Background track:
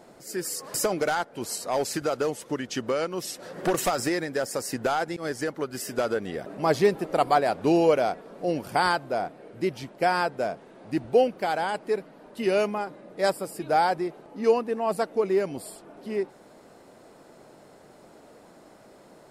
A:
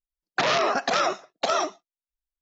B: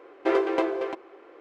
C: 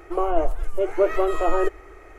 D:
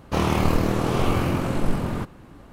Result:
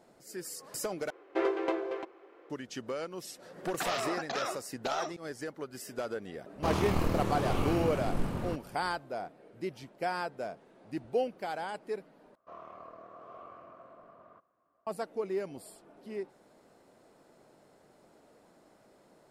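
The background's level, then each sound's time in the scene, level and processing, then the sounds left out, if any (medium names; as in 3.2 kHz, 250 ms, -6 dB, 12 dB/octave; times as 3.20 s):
background track -10 dB
1.10 s: replace with B -6.5 dB
3.42 s: add A -12 dB
6.51 s: add D -9 dB, fades 0.10 s
12.35 s: replace with D -16 dB + two resonant band-passes 860 Hz, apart 0.72 oct
not used: C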